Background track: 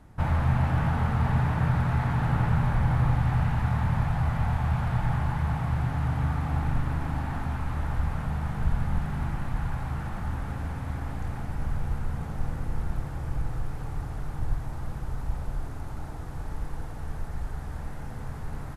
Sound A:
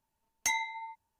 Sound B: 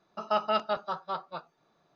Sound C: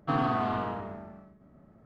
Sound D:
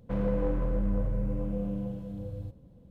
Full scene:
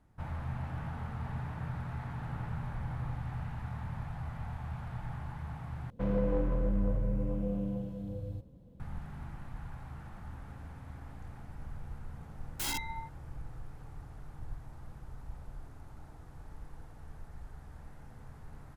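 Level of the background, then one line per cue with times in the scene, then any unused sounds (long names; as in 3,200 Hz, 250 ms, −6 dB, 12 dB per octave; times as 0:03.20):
background track −14 dB
0:05.90: overwrite with D −1.5 dB
0:12.14: mix in A −0.5 dB + wrap-around overflow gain 29.5 dB
not used: B, C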